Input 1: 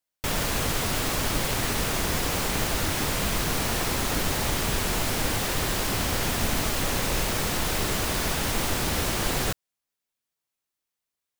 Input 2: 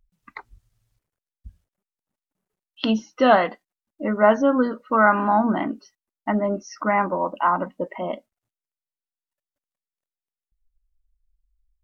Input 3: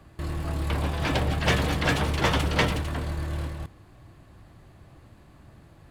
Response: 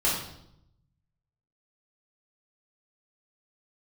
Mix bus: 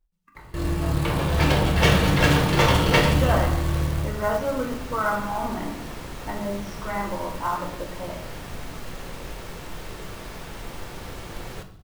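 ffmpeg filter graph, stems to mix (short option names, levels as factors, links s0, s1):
-filter_complex "[0:a]highshelf=f=4000:g=-9.5,adelay=2100,volume=0.266,asplit=2[s0][s1];[s1]volume=0.15[s2];[1:a]volume=0.237,asplit=2[s3][s4];[s4]volume=0.335[s5];[2:a]adelay=350,volume=0.841,asplit=2[s6][s7];[s7]volume=0.447[s8];[3:a]atrim=start_sample=2205[s9];[s2][s5][s8]amix=inputs=3:normalize=0[s10];[s10][s9]afir=irnorm=-1:irlink=0[s11];[s0][s3][s6][s11]amix=inputs=4:normalize=0,acrusher=bits=5:mode=log:mix=0:aa=0.000001"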